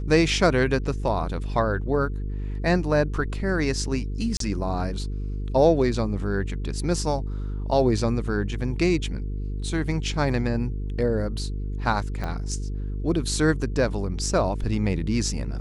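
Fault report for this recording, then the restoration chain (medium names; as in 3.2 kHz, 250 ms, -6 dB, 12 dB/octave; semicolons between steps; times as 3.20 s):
buzz 50 Hz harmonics 9 -29 dBFS
4.37–4.40 s: dropout 33 ms
12.24 s: pop -18 dBFS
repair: de-click; de-hum 50 Hz, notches 9; interpolate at 4.37 s, 33 ms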